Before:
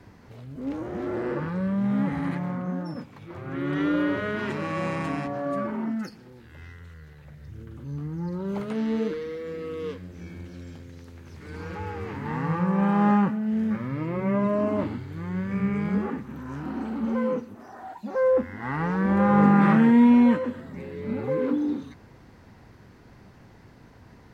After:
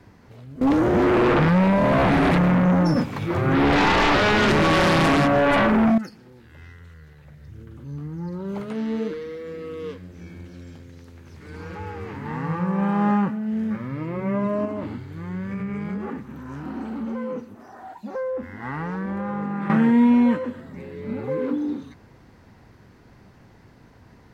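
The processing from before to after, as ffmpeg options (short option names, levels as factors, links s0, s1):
-filter_complex "[0:a]asettb=1/sr,asplit=3[s0][s1][s2];[s0]atrim=end=0.614[s3];[s1]atrim=start=0.61:end=5.98,asetpts=PTS-STARTPTS,afade=t=in:d=0.004:c=qsin,afade=t=out:st=5.366:d=0.004:c=qsin,aeval=exprs='0.188*sin(PI/2*4.47*val(0)/0.188)':c=same[s4];[s2]atrim=start=5.976[s5];[s3][s4]acrossfade=d=0.004:c1=hsin:c2=qsin[s6];[s6][s5]acrossfade=d=0.004:c1=qsin:c2=hsin,asettb=1/sr,asplit=3[s7][s8][s9];[s7]atrim=end=14.654[s10];[s8]atrim=start=14.65:end=19.7,asetpts=PTS-STARTPTS,afade=t=in:d=0.004:c=qsin,afade=t=out:st=5.046:d=0.004:c=qsin,acompressor=threshold=0.0562:ratio=6:attack=3.2:release=140:knee=1:detection=peak[s11];[s9]atrim=start=19.696[s12];[s10][s11]acrossfade=d=0.004:c1=hsin:c2=qsin[s13];[s13][s12]acrossfade=d=0.004:c1=qsin:c2=hsin"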